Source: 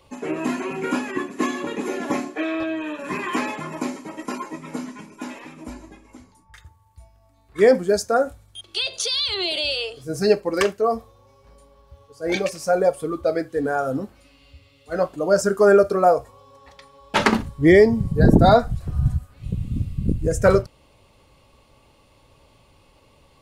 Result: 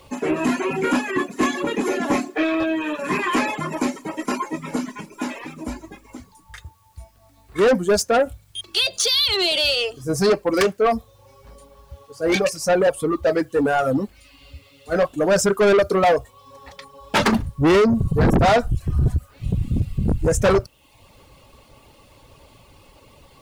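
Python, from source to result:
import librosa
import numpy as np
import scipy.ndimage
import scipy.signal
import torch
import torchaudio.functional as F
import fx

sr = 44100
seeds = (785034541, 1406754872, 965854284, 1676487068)

y = fx.dereverb_blind(x, sr, rt60_s=0.57)
y = fx.quant_dither(y, sr, seeds[0], bits=12, dither='triangular')
y = 10.0 ** (-19.5 / 20.0) * np.tanh(y / 10.0 ** (-19.5 / 20.0))
y = y * 10.0 ** (7.0 / 20.0)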